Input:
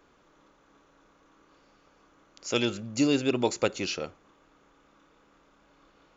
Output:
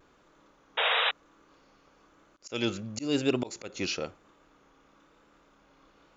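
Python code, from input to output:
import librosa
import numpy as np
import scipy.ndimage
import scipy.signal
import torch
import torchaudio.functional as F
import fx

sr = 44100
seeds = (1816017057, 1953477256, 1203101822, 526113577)

y = fx.auto_swell(x, sr, attack_ms=199.0)
y = fx.spec_paint(y, sr, seeds[0], shape='noise', start_s=0.77, length_s=0.34, low_hz=440.0, high_hz=3900.0, level_db=-26.0)
y = fx.vibrato(y, sr, rate_hz=1.0, depth_cents=42.0)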